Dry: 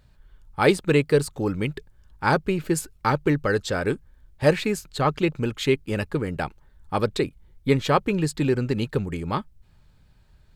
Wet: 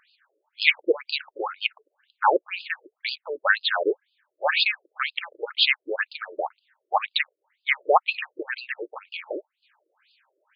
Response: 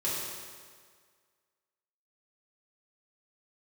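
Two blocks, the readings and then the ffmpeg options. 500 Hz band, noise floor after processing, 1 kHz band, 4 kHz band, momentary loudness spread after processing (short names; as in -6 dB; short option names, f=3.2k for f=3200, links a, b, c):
-5.0 dB, -82 dBFS, +1.0 dB, +8.5 dB, 13 LU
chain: -af "tiltshelf=f=880:g=-6.5,afftfilt=real='re*between(b*sr/1024,420*pow(3600/420,0.5+0.5*sin(2*PI*2*pts/sr))/1.41,420*pow(3600/420,0.5+0.5*sin(2*PI*2*pts/sr))*1.41)':imag='im*between(b*sr/1024,420*pow(3600/420,0.5+0.5*sin(2*PI*2*pts/sr))/1.41,420*pow(3600/420,0.5+0.5*sin(2*PI*2*pts/sr))*1.41)':win_size=1024:overlap=0.75,volume=7dB"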